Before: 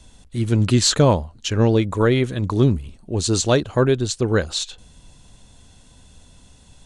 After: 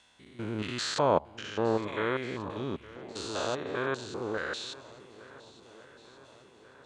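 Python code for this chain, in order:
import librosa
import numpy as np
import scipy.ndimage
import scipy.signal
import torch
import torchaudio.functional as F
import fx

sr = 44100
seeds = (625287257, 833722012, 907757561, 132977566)

y = fx.spec_steps(x, sr, hold_ms=200)
y = fx.filter_lfo_bandpass(y, sr, shape='saw_down', hz=1.6, low_hz=890.0, high_hz=2000.0, q=1.0)
y = fx.echo_swing(y, sr, ms=1439, ratio=1.5, feedback_pct=51, wet_db=-19.5)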